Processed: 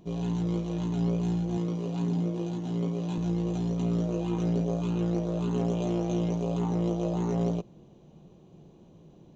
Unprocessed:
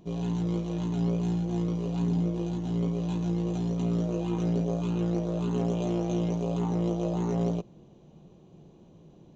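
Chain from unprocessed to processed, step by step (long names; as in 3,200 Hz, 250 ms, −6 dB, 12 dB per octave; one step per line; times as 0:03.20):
0:01.57–0:03.18: high-pass filter 140 Hz 12 dB per octave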